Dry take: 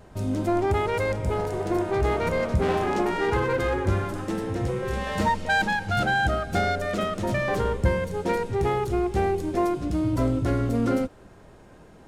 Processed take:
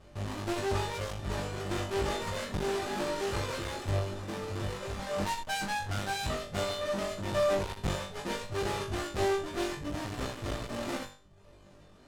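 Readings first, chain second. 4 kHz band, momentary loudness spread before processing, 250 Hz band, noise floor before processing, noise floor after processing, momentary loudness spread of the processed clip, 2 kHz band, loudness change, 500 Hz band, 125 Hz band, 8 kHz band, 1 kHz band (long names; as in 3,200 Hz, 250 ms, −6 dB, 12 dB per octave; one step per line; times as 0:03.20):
−0.5 dB, 4 LU, −11.0 dB, −50 dBFS, −56 dBFS, 7 LU, −10.0 dB, −8.5 dB, −7.5 dB, −9.0 dB, +1.5 dB, −9.0 dB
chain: each half-wave held at its own peak
reverb reduction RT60 0.71 s
low-pass filter 8,700 Hz 12 dB per octave
notch filter 2,200 Hz, Q 26
tuned comb filter 600 Hz, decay 0.2 s, harmonics all, mix 80%
on a send: flutter between parallel walls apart 3.5 metres, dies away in 0.36 s
on the sum: asymmetric clip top −38.5 dBFS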